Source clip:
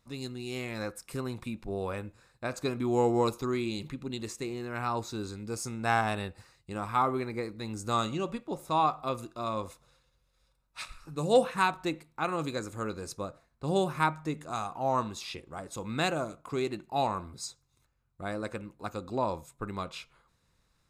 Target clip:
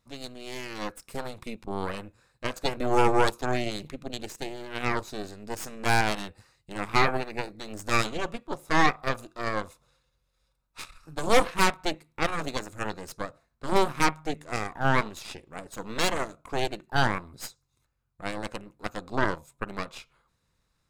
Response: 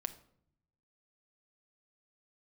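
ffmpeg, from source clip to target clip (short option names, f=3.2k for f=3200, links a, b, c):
-af "aeval=exprs='0.237*(cos(1*acos(clip(val(0)/0.237,-1,1)))-cos(1*PI/2))+0.106*(cos(6*acos(clip(val(0)/0.237,-1,1)))-cos(6*PI/2))+0.0075*(cos(7*acos(clip(val(0)/0.237,-1,1)))-cos(7*PI/2))':c=same"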